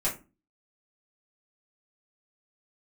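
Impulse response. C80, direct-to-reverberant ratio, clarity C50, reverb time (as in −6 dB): 17.0 dB, −7.0 dB, 10.5 dB, 0.30 s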